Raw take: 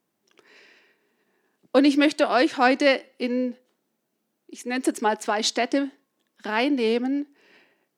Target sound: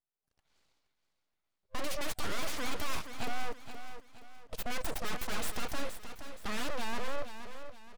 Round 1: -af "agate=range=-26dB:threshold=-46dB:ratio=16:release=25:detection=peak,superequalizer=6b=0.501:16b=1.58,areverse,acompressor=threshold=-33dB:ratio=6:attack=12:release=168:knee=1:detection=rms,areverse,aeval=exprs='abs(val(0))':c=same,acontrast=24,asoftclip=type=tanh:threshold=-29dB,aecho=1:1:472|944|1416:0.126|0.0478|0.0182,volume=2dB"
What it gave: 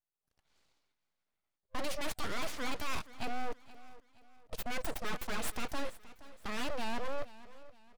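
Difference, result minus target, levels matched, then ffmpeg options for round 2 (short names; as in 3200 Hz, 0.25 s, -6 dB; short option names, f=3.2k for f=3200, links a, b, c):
compressor: peak gain reduction +6 dB; echo-to-direct -8 dB
-af "agate=range=-26dB:threshold=-46dB:ratio=16:release=25:detection=peak,superequalizer=6b=0.501:16b=1.58,areverse,acompressor=threshold=-25.5dB:ratio=6:attack=12:release=168:knee=1:detection=rms,areverse,aeval=exprs='abs(val(0))':c=same,acontrast=24,asoftclip=type=tanh:threshold=-29dB,aecho=1:1:472|944|1416|1888:0.316|0.12|0.0457|0.0174,volume=2dB"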